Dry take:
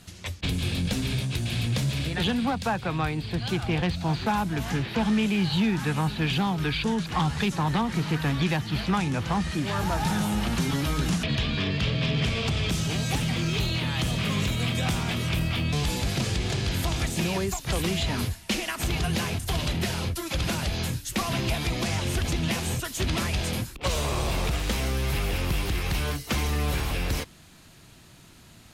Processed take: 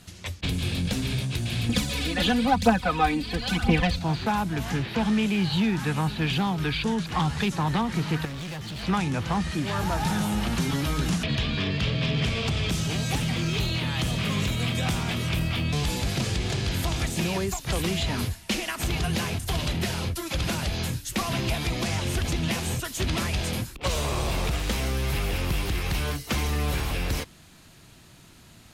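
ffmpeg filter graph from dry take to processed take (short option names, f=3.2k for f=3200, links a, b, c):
-filter_complex "[0:a]asettb=1/sr,asplit=3[a][b][c];[a]atrim=end=1.694[d];[b]atrim=start=1.69:end=3.99,asetpts=PTS-STARTPTS,afade=t=in:d=0.004:c=qsin,afade=t=out:st=2.296:d=0.004:c=qsin,aecho=1:1:4:0.99,atrim=end_sample=101430,aphaser=in_gain=1:out_gain=1:delay=3.7:decay=0.55:speed=1:type=triangular[e];[c]atrim=start=3.986[f];[d][e]acrossfade=d=0.004:c1=hsin:c2=qsin[g];[g][f]acrossfade=d=0.004:c1=qsin:c2=hsin,asettb=1/sr,asplit=3[h][i][j];[h]atrim=end=8.254[k];[i]atrim=start=8.25:end=8.83,asetpts=PTS-STARTPTS,afade=t=in:d=0.004:c=qsin,afade=t=out:st=0.576:d=0.004:c=qsin,equalizer=f=4.3k:w=0.87:g=3.5,acompressor=threshold=-28dB:ratio=2.5:attack=3.2:release=140:knee=1:detection=peak,volume=32.5dB,asoftclip=hard,volume=-32.5dB[l];[j]atrim=start=8.826[m];[k][l]acrossfade=d=0.004:c1=hsin:c2=qsin[n];[n][m]acrossfade=d=0.004:c1=qsin:c2=hsin"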